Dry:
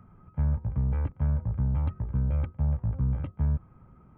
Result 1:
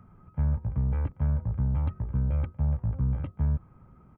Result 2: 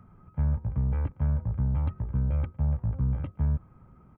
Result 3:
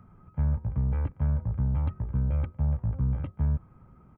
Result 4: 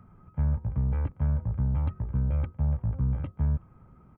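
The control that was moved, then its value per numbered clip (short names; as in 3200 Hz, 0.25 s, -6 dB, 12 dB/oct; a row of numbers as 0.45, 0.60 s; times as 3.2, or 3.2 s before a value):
speakerphone echo, time: 0.24, 0.11, 0.16, 0.37 s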